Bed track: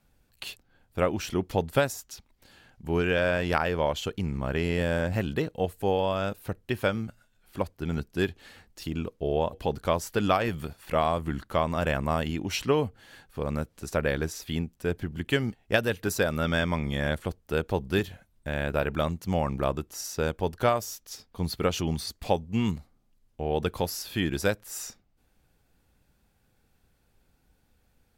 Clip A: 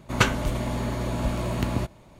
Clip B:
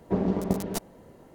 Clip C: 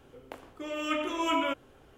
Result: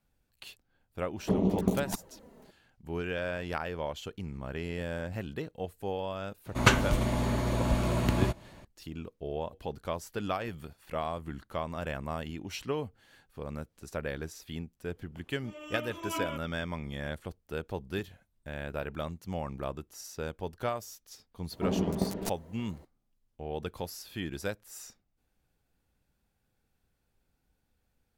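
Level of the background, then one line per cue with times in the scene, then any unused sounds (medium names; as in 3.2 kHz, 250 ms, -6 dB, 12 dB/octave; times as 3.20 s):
bed track -9 dB
1.17 s: add B -0.5 dB + touch-sensitive flanger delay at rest 5.6 ms, full sweep at -22 dBFS
6.46 s: add A -1 dB
14.84 s: add C -7 dB + upward expansion, over -47 dBFS
21.51 s: add B -4 dB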